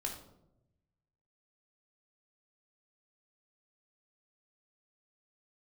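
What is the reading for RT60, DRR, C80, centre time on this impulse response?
0.85 s, 1.0 dB, 10.0 dB, 26 ms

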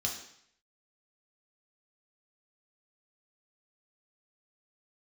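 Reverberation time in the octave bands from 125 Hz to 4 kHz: 0.70, 0.65, 0.65, 0.70, 0.70, 0.70 s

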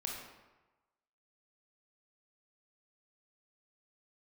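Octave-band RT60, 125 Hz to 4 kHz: 1.1, 1.0, 1.1, 1.2, 1.0, 0.75 s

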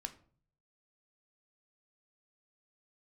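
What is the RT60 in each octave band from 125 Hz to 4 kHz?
0.90, 0.60, 0.50, 0.45, 0.35, 0.30 s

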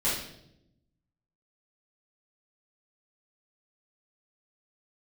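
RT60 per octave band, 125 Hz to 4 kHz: 1.4, 1.3, 0.95, 0.65, 0.60, 0.70 s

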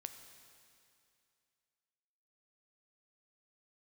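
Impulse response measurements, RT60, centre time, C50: 2.5 s, 31 ms, 8.5 dB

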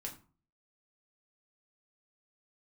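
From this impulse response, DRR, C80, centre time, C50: -0.5 dB, 15.5 dB, 15 ms, 11.5 dB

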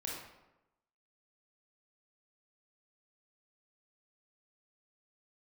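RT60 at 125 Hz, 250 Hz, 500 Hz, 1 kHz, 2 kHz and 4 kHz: 0.95, 1.0, 1.0, 0.95, 0.80, 0.60 s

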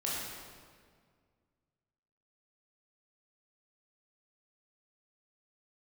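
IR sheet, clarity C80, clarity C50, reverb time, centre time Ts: 0.0 dB, -2.0 dB, 1.9 s, 0.115 s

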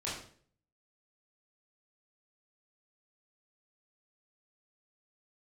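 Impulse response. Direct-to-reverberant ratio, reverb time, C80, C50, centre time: -8.0 dB, 0.50 s, 7.5 dB, 3.5 dB, 47 ms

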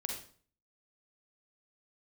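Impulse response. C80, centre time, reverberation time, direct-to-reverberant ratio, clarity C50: 8.0 dB, 32 ms, 0.45 s, 1.0 dB, 3.0 dB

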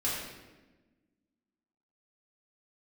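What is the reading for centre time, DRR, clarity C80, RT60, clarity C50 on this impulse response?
73 ms, -7.5 dB, 2.5 dB, 1.2 s, 0.5 dB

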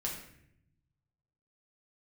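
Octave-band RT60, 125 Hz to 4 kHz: 1.7, 1.2, 0.85, 0.60, 0.75, 0.55 s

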